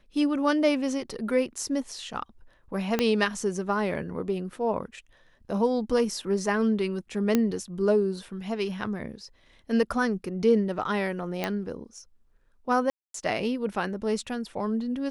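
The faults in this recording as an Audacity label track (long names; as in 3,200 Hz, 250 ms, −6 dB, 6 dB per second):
2.990000	2.990000	click −9 dBFS
7.350000	7.350000	click −9 dBFS
11.440000	11.440000	click −13 dBFS
12.900000	13.140000	drop-out 243 ms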